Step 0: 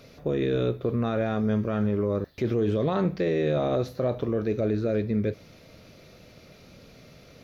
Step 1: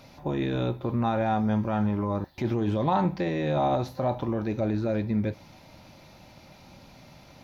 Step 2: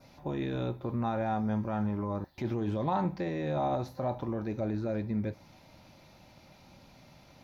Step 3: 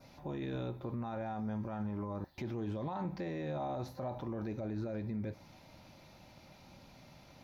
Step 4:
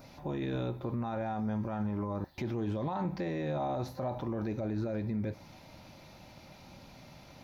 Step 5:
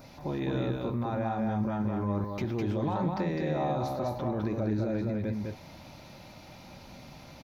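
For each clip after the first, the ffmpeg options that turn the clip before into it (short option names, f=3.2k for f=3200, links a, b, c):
-af "superequalizer=7b=0.355:9b=3.55"
-af "adynamicequalizer=threshold=0.00158:dfrequency=3100:dqfactor=2:tfrequency=3100:tqfactor=2:attack=5:release=100:ratio=0.375:range=2.5:mode=cutabove:tftype=bell,volume=-5.5dB"
-af "alimiter=level_in=5.5dB:limit=-24dB:level=0:latency=1:release=72,volume=-5.5dB,volume=-1dB"
-af "acompressor=mode=upward:threshold=-58dB:ratio=2.5,volume=4.5dB"
-af "aecho=1:1:206:0.668,volume=2.5dB"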